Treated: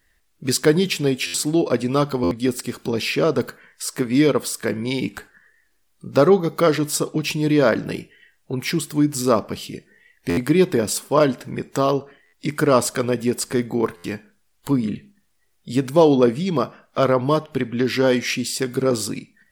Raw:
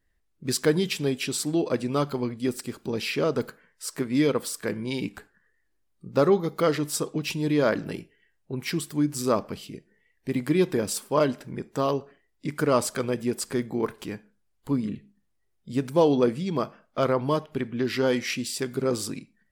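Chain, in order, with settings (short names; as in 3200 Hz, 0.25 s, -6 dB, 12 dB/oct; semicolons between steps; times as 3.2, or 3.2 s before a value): stuck buffer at 1.26/2.23/10.29/12.25/13.96, samples 512, times 6; mismatched tape noise reduction encoder only; gain +6 dB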